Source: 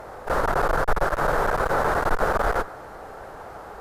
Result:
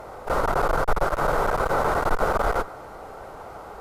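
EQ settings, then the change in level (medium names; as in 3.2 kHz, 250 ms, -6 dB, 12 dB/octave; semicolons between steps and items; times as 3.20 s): band-stop 1.7 kHz, Q 6.5; 0.0 dB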